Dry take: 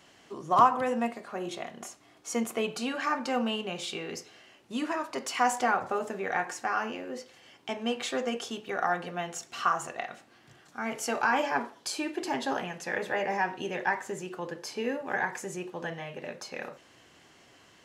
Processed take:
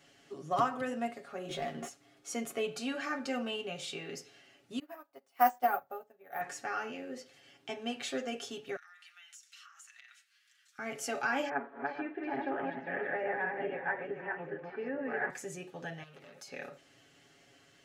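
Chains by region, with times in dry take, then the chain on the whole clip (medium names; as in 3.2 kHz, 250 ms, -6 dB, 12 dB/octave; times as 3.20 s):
1.49–1.89 s: treble shelf 3.5 kHz -11 dB + waveshaping leveller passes 2 + doubling 13 ms -2 dB
4.79–6.41 s: peaking EQ 770 Hz +10 dB 1.3 oct + careless resampling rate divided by 3×, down filtered, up hold + upward expansion 2.5:1, over -35 dBFS
8.76–10.79 s: Bessel high-pass 2.2 kHz, order 8 + compression 16:1, threshold -45 dBFS
11.49–15.30 s: backward echo that repeats 218 ms, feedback 41%, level -1.5 dB + low-pass 2.1 kHz 24 dB/octave + bass shelf 160 Hz -9.5 dB
16.03–16.48 s: treble shelf 5.1 kHz +9.5 dB + compression 3:1, threshold -42 dBFS + transformer saturation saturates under 2.3 kHz
whole clip: peaking EQ 1 kHz -13.5 dB 0.23 oct; comb 7.2 ms; trim -6 dB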